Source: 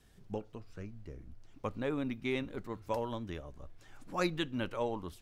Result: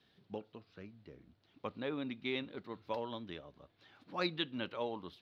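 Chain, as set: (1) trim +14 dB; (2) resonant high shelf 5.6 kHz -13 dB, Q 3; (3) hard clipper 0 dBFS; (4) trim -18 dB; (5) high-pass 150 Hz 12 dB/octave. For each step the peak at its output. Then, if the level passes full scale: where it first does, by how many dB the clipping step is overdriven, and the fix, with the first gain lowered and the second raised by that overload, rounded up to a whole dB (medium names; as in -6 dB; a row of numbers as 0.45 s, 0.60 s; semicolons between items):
-5.0 dBFS, -3.0 dBFS, -3.0 dBFS, -21.0 dBFS, -20.5 dBFS; nothing clips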